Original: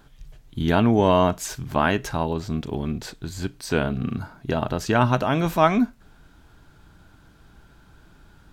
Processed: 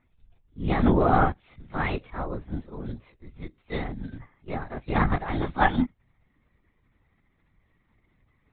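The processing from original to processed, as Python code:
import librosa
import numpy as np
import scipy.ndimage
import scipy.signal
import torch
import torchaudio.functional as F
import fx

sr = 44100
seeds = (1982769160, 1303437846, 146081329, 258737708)

y = fx.partial_stretch(x, sr, pct=118)
y = fx.lpc_vocoder(y, sr, seeds[0], excitation='whisper', order=16)
y = fx.upward_expand(y, sr, threshold_db=-40.0, expansion=1.5)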